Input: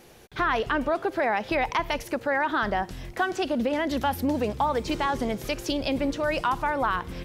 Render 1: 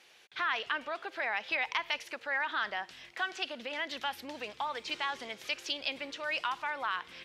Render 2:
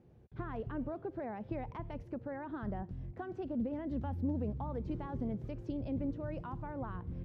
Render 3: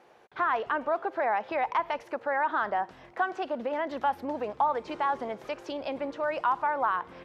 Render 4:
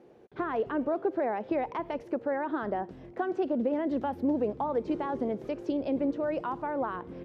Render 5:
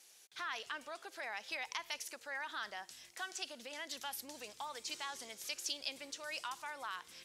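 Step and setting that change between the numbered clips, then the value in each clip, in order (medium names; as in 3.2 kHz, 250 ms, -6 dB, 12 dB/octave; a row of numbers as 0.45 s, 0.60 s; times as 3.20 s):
band-pass filter, frequency: 2.9 kHz, 100 Hz, 930 Hz, 370 Hz, 7.5 kHz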